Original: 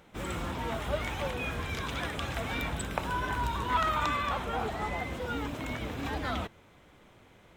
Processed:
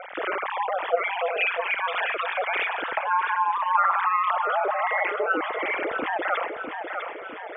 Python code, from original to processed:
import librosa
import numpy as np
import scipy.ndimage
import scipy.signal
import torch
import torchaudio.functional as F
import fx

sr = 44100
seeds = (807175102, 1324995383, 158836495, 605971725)

p1 = fx.sine_speech(x, sr)
p2 = scipy.signal.sosfilt(scipy.signal.butter(2, 2800.0, 'lowpass', fs=sr, output='sos'), p1)
p3 = fx.rider(p2, sr, range_db=4, speed_s=0.5)
p4 = p2 + (p3 * 10.0 ** (-0.5 / 20.0))
p5 = p4 * np.sin(2.0 * np.pi * 91.0 * np.arange(len(p4)) / sr)
p6 = p5 + fx.echo_feedback(p5, sr, ms=651, feedback_pct=34, wet_db=-12.5, dry=0)
y = fx.env_flatten(p6, sr, amount_pct=50)